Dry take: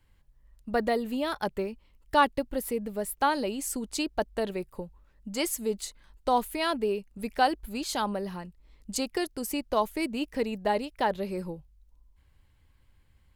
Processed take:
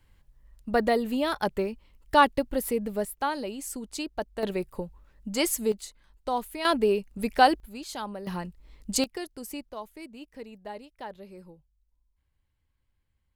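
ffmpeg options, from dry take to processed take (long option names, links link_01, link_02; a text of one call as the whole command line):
ffmpeg -i in.wav -af "asetnsamples=nb_out_samples=441:pad=0,asendcmd='3.05 volume volume -3.5dB;4.43 volume volume 3.5dB;5.72 volume volume -4dB;6.65 volume volume 5dB;7.6 volume volume -6dB;8.27 volume volume 5dB;9.04 volume volume -6dB;9.69 volume volume -13dB',volume=3dB" out.wav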